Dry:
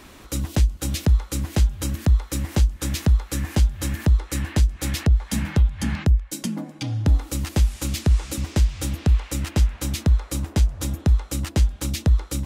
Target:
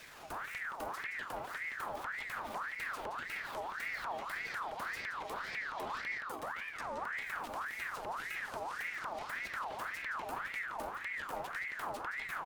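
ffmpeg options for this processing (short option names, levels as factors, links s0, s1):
-filter_complex "[0:a]alimiter=limit=0.1:level=0:latency=1:release=19,asetrate=64194,aresample=44100,atempo=0.686977,acrossover=split=110|2800[s0][s1][s2];[s0]acompressor=threshold=0.0178:ratio=4[s3];[s1]acompressor=threshold=0.0251:ratio=4[s4];[s2]acompressor=threshold=0.00316:ratio=4[s5];[s3][s4][s5]amix=inputs=3:normalize=0,aeval=exprs='0.0335*(abs(mod(val(0)/0.0335+3,4)-2)-1)':c=same,asplit=2[s6][s7];[s7]adelay=171,lowpass=f=4600:p=1,volume=0.562,asplit=2[s8][s9];[s9]adelay=171,lowpass=f=4600:p=1,volume=0.53,asplit=2[s10][s11];[s11]adelay=171,lowpass=f=4600:p=1,volume=0.53,asplit=2[s12][s13];[s13]adelay=171,lowpass=f=4600:p=1,volume=0.53,asplit=2[s14][s15];[s15]adelay=171,lowpass=f=4600:p=1,volume=0.53,asplit=2[s16][s17];[s17]adelay=171,lowpass=f=4600:p=1,volume=0.53,asplit=2[s18][s19];[s19]adelay=171,lowpass=f=4600:p=1,volume=0.53[s20];[s8][s10][s12][s14][s16][s18][s20]amix=inputs=7:normalize=0[s21];[s6][s21]amix=inputs=2:normalize=0,aeval=exprs='val(0)*sin(2*PI*1400*n/s+1400*0.5/1.8*sin(2*PI*1.8*n/s))':c=same,volume=0.596"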